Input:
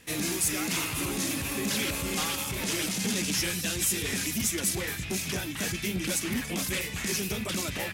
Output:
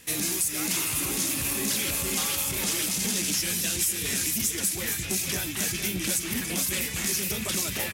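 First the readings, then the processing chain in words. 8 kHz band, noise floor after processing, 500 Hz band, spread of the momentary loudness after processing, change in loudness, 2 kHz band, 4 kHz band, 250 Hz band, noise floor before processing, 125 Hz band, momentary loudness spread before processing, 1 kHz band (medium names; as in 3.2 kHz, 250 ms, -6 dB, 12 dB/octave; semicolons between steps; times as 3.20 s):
+4.5 dB, -33 dBFS, -1.5 dB, 2 LU, +3.0 dB, 0.0 dB, +2.0 dB, -1.5 dB, -36 dBFS, -1.5 dB, 4 LU, -1.0 dB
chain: treble shelf 4.9 kHz +10.5 dB; compression, threshold -24 dBFS, peak gain reduction 9 dB; delay 461 ms -8.5 dB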